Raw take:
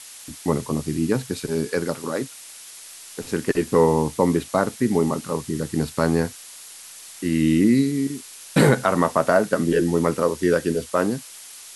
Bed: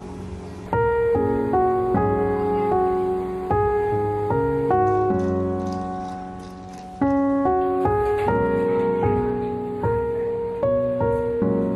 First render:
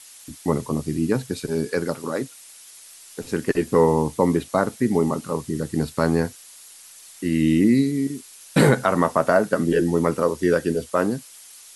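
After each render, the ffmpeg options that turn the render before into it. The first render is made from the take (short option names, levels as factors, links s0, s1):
-af "afftdn=nr=6:nf=-42"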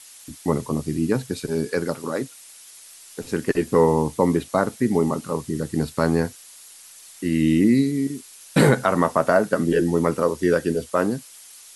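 -af anull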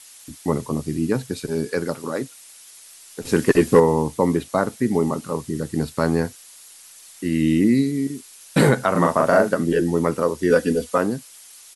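-filter_complex "[0:a]asettb=1/sr,asplit=3[s0][s1][s2];[s0]atrim=end=3.254[s3];[s1]atrim=start=3.25:end=3.8,asetpts=PTS-STARTPTS,afade=t=in:d=0.004:c=qsin,afade=t=out:st=0.546:d=0.004:c=qsin,acontrast=76[s4];[s2]atrim=start=3.796[s5];[s3][s4]acrossfade=d=0.004:c1=hsin:c2=qsin[s6];[s6][s5]acrossfade=d=0.004:c1=qsin:c2=hsin,asplit=3[s7][s8][s9];[s7]afade=t=out:st=8.94:d=0.02[s10];[s8]asplit=2[s11][s12];[s12]adelay=40,volume=0.794[s13];[s11][s13]amix=inputs=2:normalize=0,afade=t=in:st=8.94:d=0.02,afade=t=out:st=9.53:d=0.02[s14];[s9]afade=t=in:st=9.53:d=0.02[s15];[s10][s14][s15]amix=inputs=3:normalize=0,asettb=1/sr,asplit=3[s16][s17][s18];[s16]atrim=end=10.504[s19];[s17]atrim=start=10.5:end=10.98,asetpts=PTS-STARTPTS,afade=t=in:d=0.004:c=qsin,afade=t=out:st=0.476:d=0.004:c=qsin,aecho=1:1:4.1:0.94,atrim=end_sample=21168[s20];[s18]atrim=start=10.976[s21];[s19][s20]acrossfade=d=0.004:c1=hsin:c2=qsin[s22];[s22][s21]acrossfade=d=0.004:c1=qsin:c2=hsin"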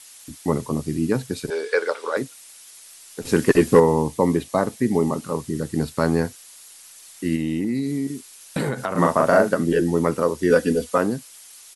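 -filter_complex "[0:a]asettb=1/sr,asplit=3[s0][s1][s2];[s0]atrim=end=1.504[s3];[s1]atrim=start=1.5:end=2.17,asetpts=PTS-STARTPTS,afade=t=in:d=0.004:c=qsin,afade=t=out:st=0.666:d=0.004:c=qsin,highpass=f=450:w=0.5412,highpass=f=450:w=1.3066,equalizer=f=460:t=q:w=4:g=9,equalizer=f=1000:t=q:w=4:g=4,equalizer=f=1500:t=q:w=4:g=8,equalizer=f=2200:t=q:w=4:g=7,equalizer=f=3500:t=q:w=4:g=7,equalizer=f=6900:t=q:w=4:g=-5,lowpass=f=8800:w=0.5412,lowpass=f=8800:w=1.3066[s4];[s2]atrim=start=2.166[s5];[s3][s4]acrossfade=d=0.004:c1=hsin:c2=qsin[s6];[s6][s5]acrossfade=d=0.004:c1=qsin:c2=hsin,asettb=1/sr,asplit=3[s7][s8][s9];[s7]atrim=end=3.984[s10];[s8]atrim=start=3.98:end=5.17,asetpts=PTS-STARTPTS,afade=t=in:d=0.004:c=qsin,afade=t=out:st=1.186:d=0.004:c=qsin,bandreject=f=1400:w=7.6[s11];[s9]atrim=start=5.166[s12];[s10][s11]acrossfade=d=0.004:c1=hsin:c2=qsin[s13];[s13][s12]acrossfade=d=0.004:c1=qsin:c2=hsin,asplit=3[s14][s15][s16];[s14]afade=t=out:st=7.35:d=0.02[s17];[s15]acompressor=threshold=0.1:ratio=6:attack=3.2:release=140:knee=1:detection=peak,afade=t=in:st=7.35:d=0.02,afade=t=out:st=8.97:d=0.02[s18];[s16]afade=t=in:st=8.97:d=0.02[s19];[s17][s18][s19]amix=inputs=3:normalize=0"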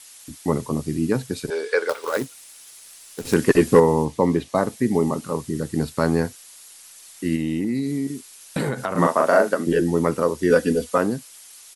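-filter_complex "[0:a]asettb=1/sr,asplit=3[s0][s1][s2];[s0]atrim=end=1.894[s3];[s1]atrim=start=1.89:end=3.34,asetpts=PTS-STARTPTS,afade=t=in:d=0.004:c=qsin,afade=t=out:st=1.446:d=0.004:c=qsin,acrusher=bits=3:mode=log:mix=0:aa=0.000001[s4];[s2]atrim=start=3.336[s5];[s3][s4]acrossfade=d=0.004:c1=hsin:c2=qsin[s6];[s6][s5]acrossfade=d=0.004:c1=qsin:c2=hsin,asettb=1/sr,asplit=3[s7][s8][s9];[s7]atrim=end=4.054[s10];[s8]atrim=start=4.05:end=4.55,asetpts=PTS-STARTPTS,afade=t=in:d=0.004:c=qsin,afade=t=out:st=0.496:d=0.004:c=qsin,acrossover=split=6600[s11][s12];[s12]acompressor=threshold=0.00224:ratio=4:attack=1:release=60[s13];[s11][s13]amix=inputs=2:normalize=0[s14];[s9]atrim=start=4.546[s15];[s10][s14]acrossfade=d=0.004:c1=hsin:c2=qsin[s16];[s16][s15]acrossfade=d=0.004:c1=qsin:c2=hsin,asettb=1/sr,asplit=3[s17][s18][s19];[s17]atrim=end=9.074[s20];[s18]atrim=start=9.07:end=9.67,asetpts=PTS-STARTPTS,afade=t=in:d=0.004:c=qsin,afade=t=out:st=0.596:d=0.004:c=qsin,highpass=280[s21];[s19]atrim=start=9.666[s22];[s20][s21]acrossfade=d=0.004:c1=hsin:c2=qsin[s23];[s23][s22]acrossfade=d=0.004:c1=qsin:c2=hsin"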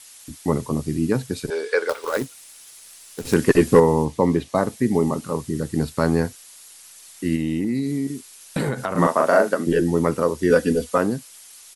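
-af "lowshelf=f=77:g=6.5"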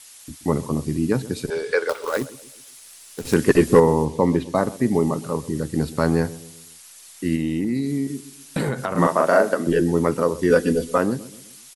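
-filter_complex "[0:a]asplit=2[s0][s1];[s1]adelay=128,lowpass=f=880:p=1,volume=0.15,asplit=2[s2][s3];[s3]adelay=128,lowpass=f=880:p=1,volume=0.47,asplit=2[s4][s5];[s5]adelay=128,lowpass=f=880:p=1,volume=0.47,asplit=2[s6][s7];[s7]adelay=128,lowpass=f=880:p=1,volume=0.47[s8];[s0][s2][s4][s6][s8]amix=inputs=5:normalize=0"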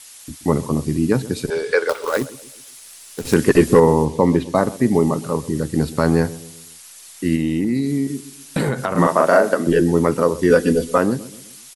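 -af "volume=1.5,alimiter=limit=0.794:level=0:latency=1"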